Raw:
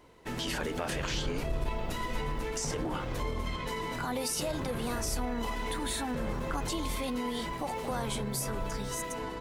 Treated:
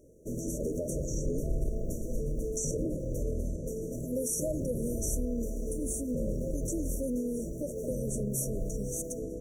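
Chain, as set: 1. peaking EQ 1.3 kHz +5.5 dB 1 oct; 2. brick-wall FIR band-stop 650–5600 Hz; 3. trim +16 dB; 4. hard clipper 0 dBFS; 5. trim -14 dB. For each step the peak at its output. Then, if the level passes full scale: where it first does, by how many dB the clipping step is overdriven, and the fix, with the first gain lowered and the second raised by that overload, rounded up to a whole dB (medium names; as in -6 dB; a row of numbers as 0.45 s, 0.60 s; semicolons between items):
-17.0 dBFS, -21.0 dBFS, -5.0 dBFS, -5.0 dBFS, -19.0 dBFS; nothing clips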